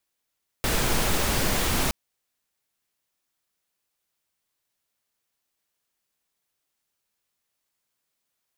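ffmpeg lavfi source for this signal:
-f lavfi -i "anoisesrc=c=pink:a=0.343:d=1.27:r=44100:seed=1"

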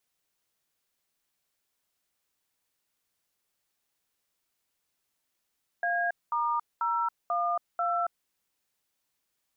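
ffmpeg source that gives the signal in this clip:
-f lavfi -i "aevalsrc='0.0398*clip(min(mod(t,0.49),0.277-mod(t,0.49))/0.002,0,1)*(eq(floor(t/0.49),0)*(sin(2*PI*697*mod(t,0.49))+sin(2*PI*1633*mod(t,0.49)))+eq(floor(t/0.49),1)*(sin(2*PI*941*mod(t,0.49))+sin(2*PI*1209*mod(t,0.49)))+eq(floor(t/0.49),2)*(sin(2*PI*941*mod(t,0.49))+sin(2*PI*1336*mod(t,0.49)))+eq(floor(t/0.49),3)*(sin(2*PI*697*mod(t,0.49))+sin(2*PI*1209*mod(t,0.49)))+eq(floor(t/0.49),4)*(sin(2*PI*697*mod(t,0.49))+sin(2*PI*1336*mod(t,0.49))))':d=2.45:s=44100"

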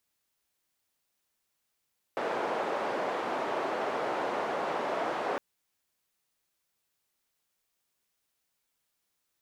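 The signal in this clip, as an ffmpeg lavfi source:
-f lavfi -i "anoisesrc=c=white:d=3.21:r=44100:seed=1,highpass=f=470,lowpass=f=700,volume=-8.8dB"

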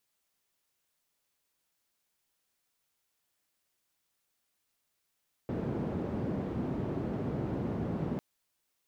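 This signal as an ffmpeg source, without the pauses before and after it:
-f lavfi -i "anoisesrc=c=white:d=2.7:r=44100:seed=1,highpass=f=99,lowpass=f=280,volume=-8.9dB"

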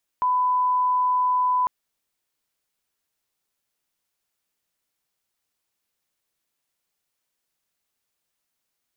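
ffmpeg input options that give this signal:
-f lavfi -i "sine=f=1000:d=1.45:r=44100,volume=0.06dB"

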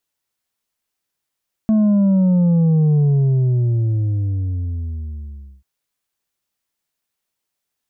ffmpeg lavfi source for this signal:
-f lavfi -i "aevalsrc='0.251*clip((3.94-t)/2.66,0,1)*tanh(1.68*sin(2*PI*220*3.94/log(65/220)*(exp(log(65/220)*t/3.94)-1)))/tanh(1.68)':d=3.94:s=44100"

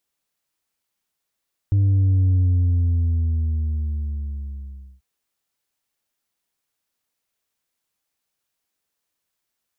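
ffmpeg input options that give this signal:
-f lavfi -i "aevalsrc='0.188*clip((3.29-t)/2.69,0,1)*tanh(1.41*sin(2*PI*100*3.29/log(65/100)*(exp(log(65/100)*t/3.29)-1)))/tanh(1.41)':d=3.29:s=44100"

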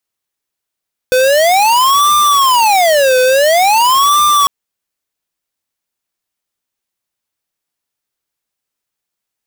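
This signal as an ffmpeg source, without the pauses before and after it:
-f lavfi -i "aevalsrc='0.335*(2*lt(mod((848.5*t-341.5/(2*PI*0.48)*sin(2*PI*0.48*t)),1),0.5)-1)':d=3.35:s=44100"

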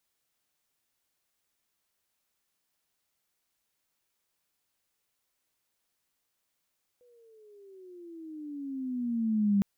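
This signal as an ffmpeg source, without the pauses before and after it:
-f lavfi -i "aevalsrc='pow(10,(-20.5+38*(t/2.61-1))/20)*sin(2*PI*496*2.61/(-16*log(2)/12)*(exp(-16*log(2)/12*t/2.61)-1))':d=2.61:s=44100"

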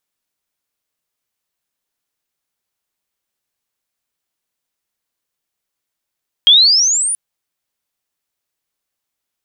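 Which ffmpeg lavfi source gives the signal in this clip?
-f lavfi -i "aevalsrc='pow(10,(-3.5-12*t/0.68)/20)*sin(2*PI*3200*0.68/log(9900/3200)*(exp(log(9900/3200)*t/0.68)-1))':d=0.68:s=44100"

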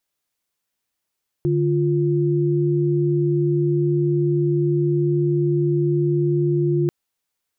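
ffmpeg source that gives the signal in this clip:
-f lavfi -i "aevalsrc='0.112*(sin(2*PI*146.83*t)+sin(2*PI*349.23*t))':d=5.44:s=44100"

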